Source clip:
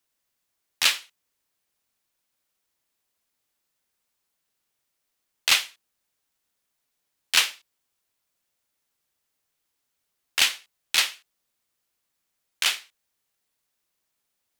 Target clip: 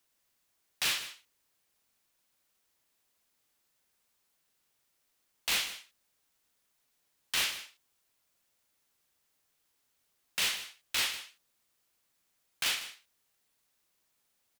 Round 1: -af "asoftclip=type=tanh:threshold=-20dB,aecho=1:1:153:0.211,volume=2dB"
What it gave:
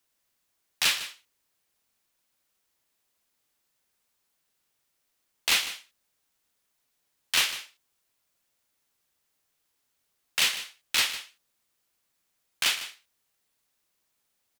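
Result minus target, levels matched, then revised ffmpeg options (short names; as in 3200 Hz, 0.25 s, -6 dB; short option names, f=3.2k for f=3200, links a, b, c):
soft clip: distortion -5 dB
-af "asoftclip=type=tanh:threshold=-29dB,aecho=1:1:153:0.211,volume=2dB"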